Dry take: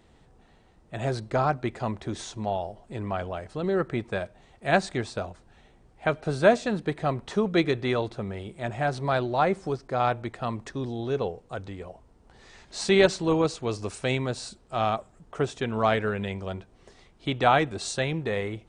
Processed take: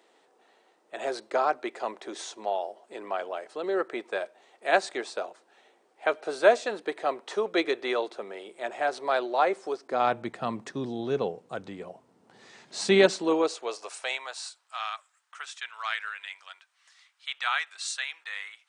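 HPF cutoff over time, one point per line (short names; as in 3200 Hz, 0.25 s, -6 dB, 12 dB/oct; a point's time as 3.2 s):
HPF 24 dB/oct
9.74 s 360 Hz
10.17 s 150 Hz
12.84 s 150 Hz
13.84 s 560 Hz
14.96 s 1300 Hz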